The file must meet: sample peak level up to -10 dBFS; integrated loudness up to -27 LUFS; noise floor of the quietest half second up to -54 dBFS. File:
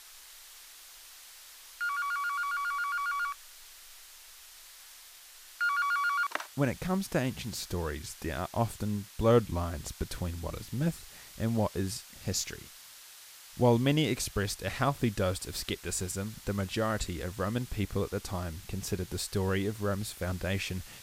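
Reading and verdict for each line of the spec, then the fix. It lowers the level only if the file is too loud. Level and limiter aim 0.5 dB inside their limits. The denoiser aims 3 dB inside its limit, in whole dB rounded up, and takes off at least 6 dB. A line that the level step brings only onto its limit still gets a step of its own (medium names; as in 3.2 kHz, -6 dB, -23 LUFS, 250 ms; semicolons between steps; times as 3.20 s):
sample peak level -11.5 dBFS: pass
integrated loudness -32.0 LUFS: pass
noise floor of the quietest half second -52 dBFS: fail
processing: noise reduction 6 dB, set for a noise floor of -52 dBFS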